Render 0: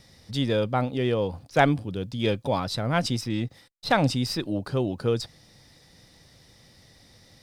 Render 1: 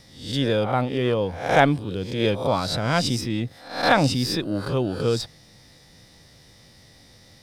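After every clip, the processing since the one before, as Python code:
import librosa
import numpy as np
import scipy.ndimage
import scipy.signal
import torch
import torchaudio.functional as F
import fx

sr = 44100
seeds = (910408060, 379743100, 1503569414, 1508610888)

y = fx.spec_swells(x, sr, rise_s=0.54)
y = F.gain(torch.from_numpy(y), 1.5).numpy()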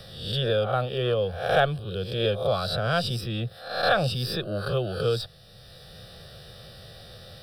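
y = fx.fixed_phaser(x, sr, hz=1400.0, stages=8)
y = fx.band_squash(y, sr, depth_pct=40)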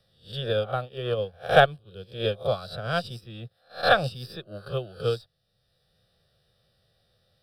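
y = fx.upward_expand(x, sr, threshold_db=-37.0, expansion=2.5)
y = F.gain(torch.from_numpy(y), 6.5).numpy()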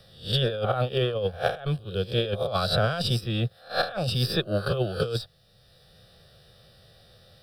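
y = fx.over_compress(x, sr, threshold_db=-34.0, ratio=-1.0)
y = F.gain(torch.from_numpy(y), 7.0).numpy()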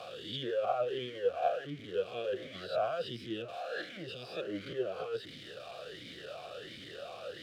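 y = x + 0.5 * 10.0 ** (-22.5 / 20.0) * np.sign(x)
y = fx.vowel_sweep(y, sr, vowels='a-i', hz=1.4)
y = F.gain(torch.from_numpy(y), -2.5).numpy()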